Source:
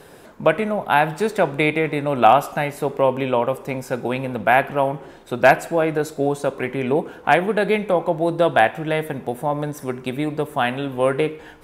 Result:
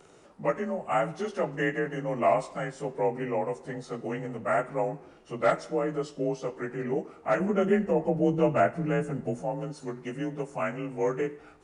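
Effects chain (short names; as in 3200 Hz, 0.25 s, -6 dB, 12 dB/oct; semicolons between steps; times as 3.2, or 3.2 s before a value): inharmonic rescaling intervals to 90%; 7.4–9.42 low shelf 320 Hz +11 dB; gain -8 dB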